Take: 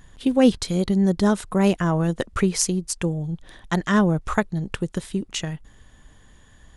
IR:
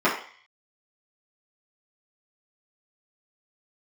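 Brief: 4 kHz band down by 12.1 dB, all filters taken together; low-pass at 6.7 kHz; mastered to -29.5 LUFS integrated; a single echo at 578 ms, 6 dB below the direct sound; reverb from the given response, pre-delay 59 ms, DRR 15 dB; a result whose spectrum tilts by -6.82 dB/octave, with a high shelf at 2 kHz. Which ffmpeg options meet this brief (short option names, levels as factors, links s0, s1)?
-filter_complex "[0:a]lowpass=6700,highshelf=f=2000:g=-7.5,equalizer=f=4000:t=o:g=-8.5,aecho=1:1:578:0.501,asplit=2[s0][s1];[1:a]atrim=start_sample=2205,adelay=59[s2];[s1][s2]afir=irnorm=-1:irlink=0,volume=0.0224[s3];[s0][s3]amix=inputs=2:normalize=0,volume=0.447"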